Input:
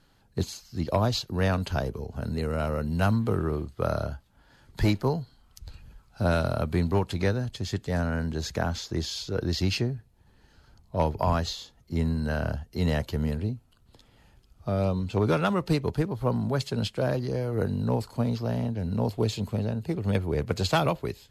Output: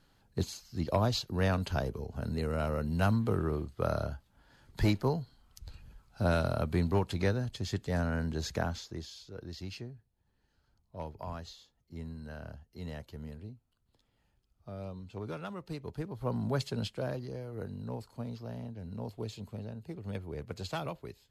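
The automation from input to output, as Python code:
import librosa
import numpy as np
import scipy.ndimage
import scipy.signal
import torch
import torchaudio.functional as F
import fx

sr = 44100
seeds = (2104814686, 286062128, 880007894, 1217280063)

y = fx.gain(x, sr, db=fx.line((8.59, -4.0), (9.19, -16.0), (15.71, -16.0), (16.53, -4.0), (17.5, -13.0)))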